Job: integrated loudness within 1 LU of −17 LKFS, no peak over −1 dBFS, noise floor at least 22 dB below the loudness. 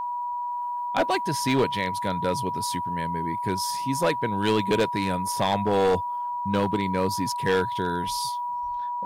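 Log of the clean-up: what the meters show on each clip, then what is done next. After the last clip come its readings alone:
share of clipped samples 0.9%; peaks flattened at −16.0 dBFS; interfering tone 970 Hz; level of the tone −27 dBFS; integrated loudness −26.0 LKFS; sample peak −16.0 dBFS; target loudness −17.0 LKFS
→ clipped peaks rebuilt −16 dBFS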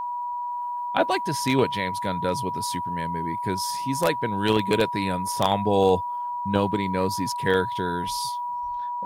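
share of clipped samples 0.0%; interfering tone 970 Hz; level of the tone −27 dBFS
→ notch filter 970 Hz, Q 30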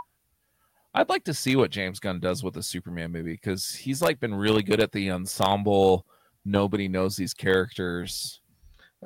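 interfering tone none found; integrated loudness −26.0 LKFS; sample peak −6.5 dBFS; target loudness −17.0 LKFS
→ level +9 dB
brickwall limiter −1 dBFS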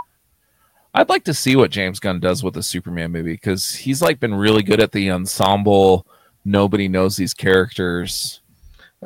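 integrated loudness −17.5 LKFS; sample peak −1.0 dBFS; background noise floor −62 dBFS

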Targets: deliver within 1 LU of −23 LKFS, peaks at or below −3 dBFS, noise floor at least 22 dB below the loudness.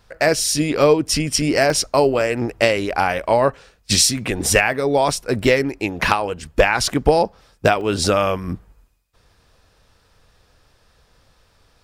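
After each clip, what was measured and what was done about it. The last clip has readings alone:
number of dropouts 4; longest dropout 1.5 ms; integrated loudness −18.0 LKFS; sample peak −2.5 dBFS; target loudness −23.0 LKFS
→ repair the gap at 0:01.70/0:02.21/0:05.35/0:07.81, 1.5 ms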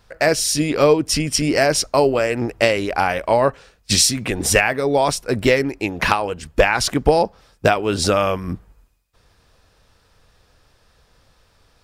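number of dropouts 0; integrated loudness −18.0 LKFS; sample peak −2.5 dBFS; target loudness −23.0 LKFS
→ level −5 dB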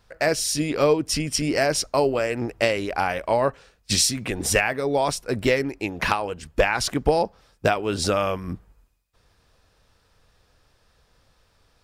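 integrated loudness −23.0 LKFS; sample peak −7.5 dBFS; background noise floor −64 dBFS

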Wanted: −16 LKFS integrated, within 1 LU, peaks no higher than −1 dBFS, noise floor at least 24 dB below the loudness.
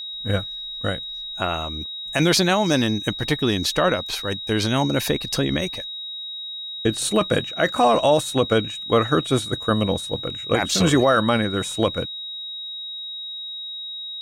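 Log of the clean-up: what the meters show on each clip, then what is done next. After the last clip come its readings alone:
crackle rate 36 per second; interfering tone 3,800 Hz; level of the tone −30 dBFS; integrated loudness −22.5 LKFS; sample peak −7.0 dBFS; target loudness −16.0 LKFS
→ click removal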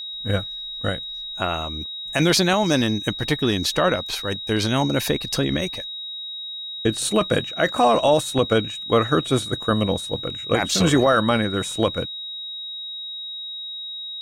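crackle rate 0.35 per second; interfering tone 3,800 Hz; level of the tone −30 dBFS
→ notch filter 3,800 Hz, Q 30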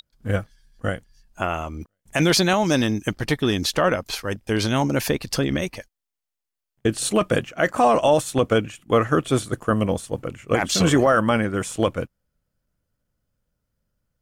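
interfering tone none found; integrated loudness −22.0 LKFS; sample peak −7.5 dBFS; target loudness −16.0 LKFS
→ level +6 dB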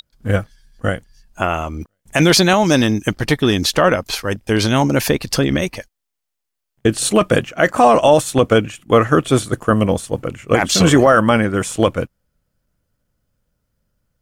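integrated loudness −16.0 LKFS; sample peak −1.5 dBFS; background noise floor −78 dBFS

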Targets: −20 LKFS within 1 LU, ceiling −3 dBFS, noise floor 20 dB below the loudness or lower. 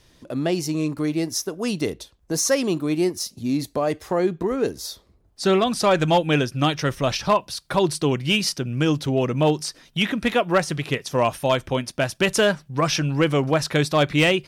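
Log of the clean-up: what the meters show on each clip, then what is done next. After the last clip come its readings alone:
share of clipped samples 0.2%; peaks flattened at −10.5 dBFS; integrated loudness −22.5 LKFS; sample peak −10.5 dBFS; target loudness −20.0 LKFS
→ clipped peaks rebuilt −10.5 dBFS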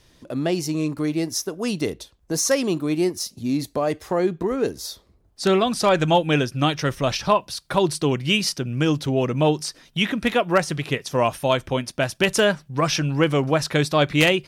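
share of clipped samples 0.0%; integrated loudness −22.0 LKFS; sample peak −1.5 dBFS; target loudness −20.0 LKFS
→ level +2 dB
brickwall limiter −3 dBFS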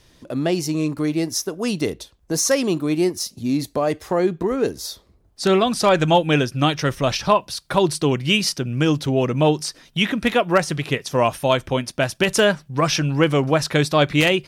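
integrated loudness −20.5 LKFS; sample peak −3.0 dBFS; background noise floor −57 dBFS

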